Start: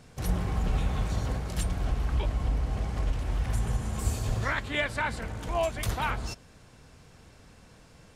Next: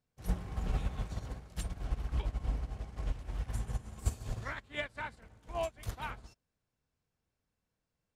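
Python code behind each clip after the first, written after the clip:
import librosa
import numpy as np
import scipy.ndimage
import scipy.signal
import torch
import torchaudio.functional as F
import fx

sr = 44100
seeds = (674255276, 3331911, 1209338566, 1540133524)

y = fx.upward_expand(x, sr, threshold_db=-42.0, expansion=2.5)
y = y * librosa.db_to_amplitude(-2.5)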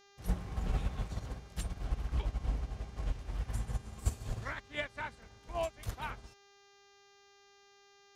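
y = fx.dmg_buzz(x, sr, base_hz=400.0, harmonics=17, level_db=-63.0, tilt_db=-3, odd_only=False)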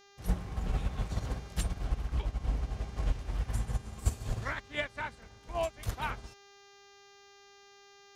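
y = fx.rider(x, sr, range_db=10, speed_s=0.5)
y = y * librosa.db_to_amplitude(3.5)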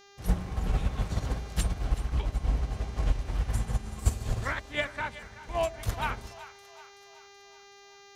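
y = fx.echo_split(x, sr, split_hz=660.0, low_ms=89, high_ms=378, feedback_pct=52, wet_db=-15.0)
y = y * librosa.db_to_amplitude(4.0)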